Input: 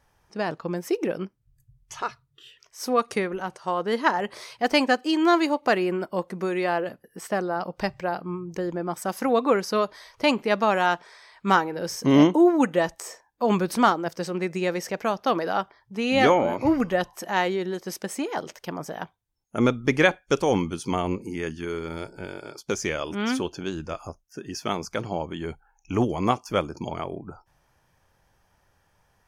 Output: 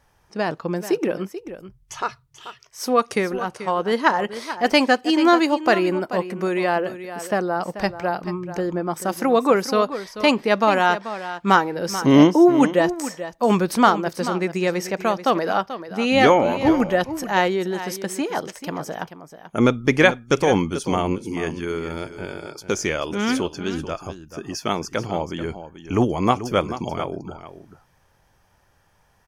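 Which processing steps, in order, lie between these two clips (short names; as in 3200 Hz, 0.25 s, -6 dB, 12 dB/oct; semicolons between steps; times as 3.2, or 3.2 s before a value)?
echo 0.436 s -12.5 dB; gain +4 dB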